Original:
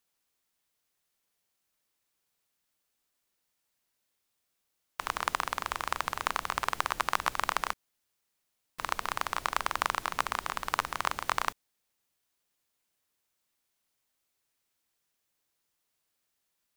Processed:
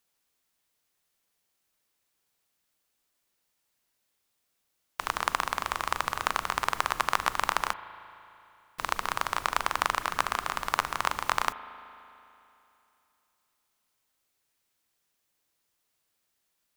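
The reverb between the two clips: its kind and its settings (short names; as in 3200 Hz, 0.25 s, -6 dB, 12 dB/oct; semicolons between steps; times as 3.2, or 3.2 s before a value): spring tank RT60 2.9 s, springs 37 ms, chirp 65 ms, DRR 13.5 dB; gain +2.5 dB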